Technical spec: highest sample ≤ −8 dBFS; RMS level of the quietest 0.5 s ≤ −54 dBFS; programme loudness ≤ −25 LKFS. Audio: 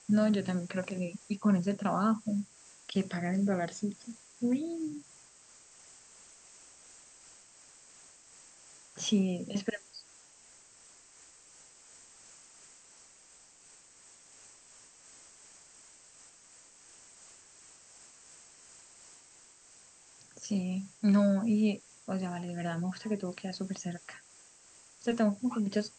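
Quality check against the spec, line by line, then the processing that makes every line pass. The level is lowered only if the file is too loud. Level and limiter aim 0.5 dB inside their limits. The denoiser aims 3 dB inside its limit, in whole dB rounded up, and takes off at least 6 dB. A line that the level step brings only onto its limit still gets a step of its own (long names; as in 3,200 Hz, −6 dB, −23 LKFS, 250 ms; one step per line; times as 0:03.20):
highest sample −17.0 dBFS: in spec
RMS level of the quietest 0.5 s −59 dBFS: in spec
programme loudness −32.5 LKFS: in spec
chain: no processing needed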